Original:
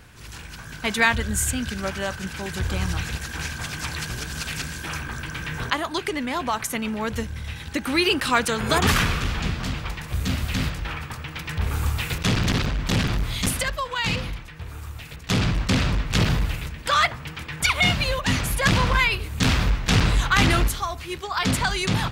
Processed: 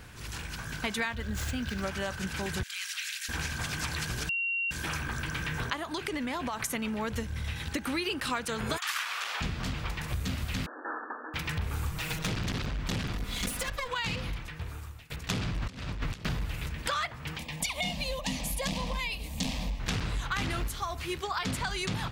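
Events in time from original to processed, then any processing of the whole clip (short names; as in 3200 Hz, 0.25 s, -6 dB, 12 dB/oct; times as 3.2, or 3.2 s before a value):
1.11–1.82 median filter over 5 samples
2.63–3.29 inverse Chebyshev high-pass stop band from 420 Hz, stop band 70 dB
4.29–4.71 bleep 2750 Hz -22 dBFS
5.83–6.62 compressor, threshold -26 dBFS
8.76–9.4 HPF 1300 Hz -> 550 Hz 24 dB/oct
10.66–11.34 brick-wall FIR band-pass 240–1800 Hz
11.91–12.31 minimum comb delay 6.3 ms
13.13–13.88 minimum comb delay 4.1 ms
14.5–15.1 fade out, to -20.5 dB
15.62–16.25 negative-ratio compressor -28 dBFS, ratio -0.5
17.37–19.8 fixed phaser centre 380 Hz, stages 6
20.6–21.19 companded quantiser 8-bit
whole clip: compressor 5:1, threshold -30 dBFS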